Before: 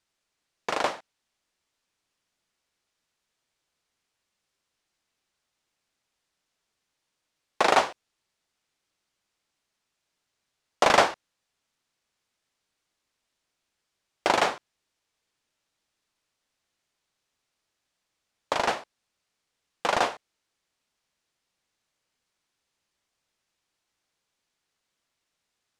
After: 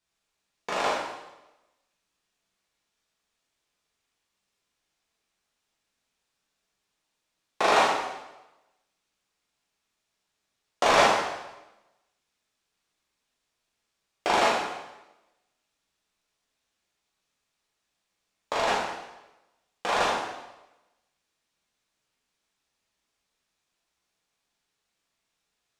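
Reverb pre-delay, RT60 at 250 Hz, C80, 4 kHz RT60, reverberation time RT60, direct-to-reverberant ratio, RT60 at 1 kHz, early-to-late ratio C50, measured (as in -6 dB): 6 ms, 0.95 s, 4.5 dB, 0.95 s, 1.0 s, -5.5 dB, 1.0 s, 1.5 dB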